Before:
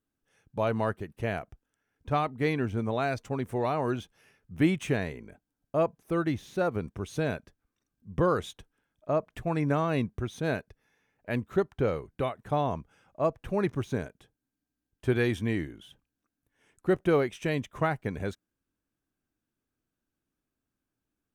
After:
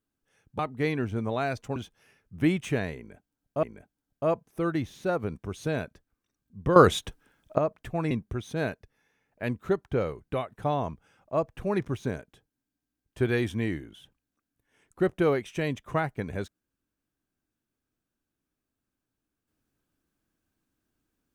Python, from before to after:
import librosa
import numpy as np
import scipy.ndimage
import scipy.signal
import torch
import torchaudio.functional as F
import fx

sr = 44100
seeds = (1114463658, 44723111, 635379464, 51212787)

y = fx.edit(x, sr, fx.cut(start_s=0.59, length_s=1.61),
    fx.cut(start_s=3.37, length_s=0.57),
    fx.repeat(start_s=5.15, length_s=0.66, count=2),
    fx.clip_gain(start_s=8.28, length_s=0.82, db=11.5),
    fx.cut(start_s=9.63, length_s=0.35), tone=tone)